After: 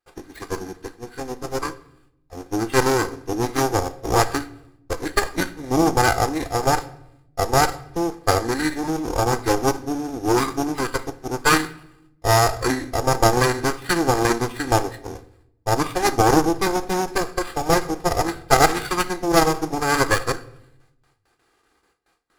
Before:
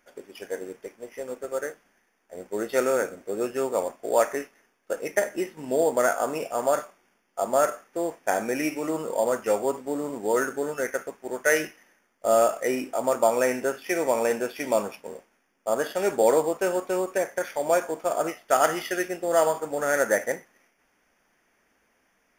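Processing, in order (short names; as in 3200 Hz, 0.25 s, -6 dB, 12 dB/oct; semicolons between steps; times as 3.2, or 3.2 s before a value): minimum comb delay 2.5 ms; gate with hold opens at -59 dBFS; formant shift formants -5 st; added harmonics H 4 -12 dB, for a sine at -8 dBFS; on a send: reverb RT60 0.80 s, pre-delay 6 ms, DRR 14 dB; on the sum: gain +5 dB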